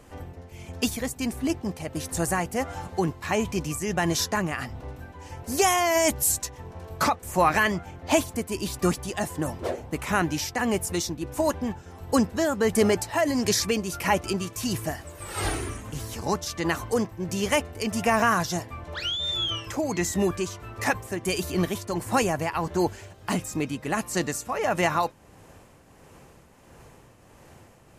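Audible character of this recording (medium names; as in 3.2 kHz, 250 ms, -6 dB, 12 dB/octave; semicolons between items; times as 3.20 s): tremolo triangle 1.5 Hz, depth 55%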